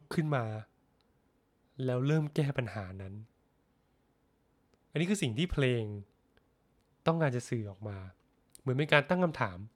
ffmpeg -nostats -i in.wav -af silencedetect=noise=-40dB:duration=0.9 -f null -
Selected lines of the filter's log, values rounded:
silence_start: 0.61
silence_end: 1.79 | silence_duration: 1.19
silence_start: 3.20
silence_end: 4.95 | silence_duration: 1.75
silence_start: 6.01
silence_end: 7.06 | silence_duration: 1.05